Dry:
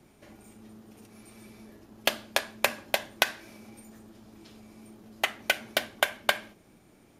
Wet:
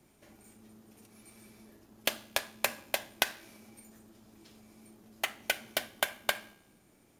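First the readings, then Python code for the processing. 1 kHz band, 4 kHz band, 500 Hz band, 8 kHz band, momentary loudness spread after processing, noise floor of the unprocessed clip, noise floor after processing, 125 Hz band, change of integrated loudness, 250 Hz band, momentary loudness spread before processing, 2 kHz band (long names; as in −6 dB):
−6.0 dB, −4.5 dB, −6.0 dB, −1.5 dB, 8 LU, −59 dBFS, −65 dBFS, −5.5 dB, −4.5 dB, −6.0 dB, 8 LU, −5.5 dB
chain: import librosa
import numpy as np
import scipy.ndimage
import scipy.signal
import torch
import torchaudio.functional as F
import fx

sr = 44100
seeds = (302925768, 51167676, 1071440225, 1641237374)

p1 = fx.high_shelf(x, sr, hz=3900.0, db=9.0)
p2 = fx.comb_fb(p1, sr, f0_hz=67.0, decay_s=1.0, harmonics='all', damping=0.0, mix_pct=30)
p3 = fx.sample_hold(p2, sr, seeds[0], rate_hz=6600.0, jitter_pct=0)
p4 = p2 + (p3 * 10.0 ** (-10.5 / 20.0))
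y = p4 * 10.0 ** (-6.0 / 20.0)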